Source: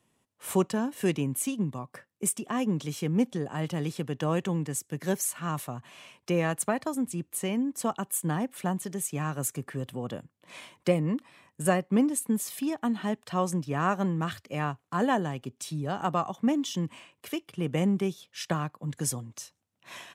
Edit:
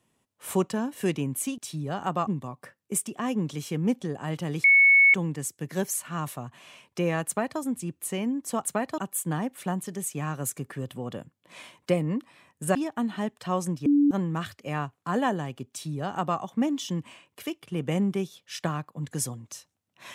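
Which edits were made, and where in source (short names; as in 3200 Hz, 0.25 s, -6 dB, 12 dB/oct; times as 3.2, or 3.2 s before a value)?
3.95–4.45 bleep 2210 Hz -13.5 dBFS
6.58–6.91 copy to 7.96
11.73–12.61 cut
13.72–13.97 bleep 288 Hz -16.5 dBFS
15.56–16.25 copy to 1.58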